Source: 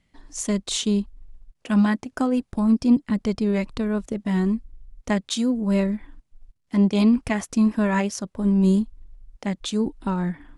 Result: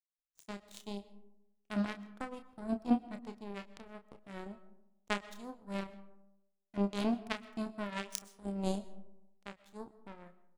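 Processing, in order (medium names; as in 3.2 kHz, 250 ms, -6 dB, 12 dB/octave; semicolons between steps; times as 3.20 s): 8.10–8.52 s: treble shelf 4 kHz +11.5 dB; power-law waveshaper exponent 3; doubling 30 ms -9 dB; algorithmic reverb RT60 0.9 s, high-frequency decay 0.4×, pre-delay 85 ms, DRR 16.5 dB; trim -2.5 dB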